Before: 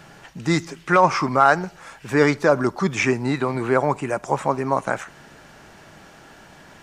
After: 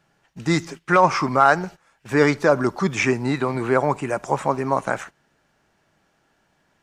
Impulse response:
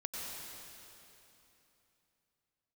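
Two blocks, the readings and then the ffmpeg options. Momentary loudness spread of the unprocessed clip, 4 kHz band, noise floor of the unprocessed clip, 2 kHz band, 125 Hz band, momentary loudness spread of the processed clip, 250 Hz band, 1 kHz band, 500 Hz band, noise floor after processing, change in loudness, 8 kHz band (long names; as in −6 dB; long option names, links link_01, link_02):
11 LU, 0.0 dB, −48 dBFS, 0.0 dB, 0.0 dB, 8 LU, 0.0 dB, 0.0 dB, 0.0 dB, −66 dBFS, 0.0 dB, 0.0 dB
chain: -af "agate=range=-19dB:threshold=-35dB:ratio=16:detection=peak"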